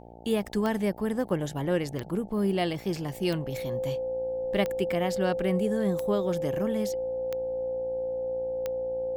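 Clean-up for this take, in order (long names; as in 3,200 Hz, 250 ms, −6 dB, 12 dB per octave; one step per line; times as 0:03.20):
click removal
hum removal 58.1 Hz, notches 15
notch filter 520 Hz, Q 30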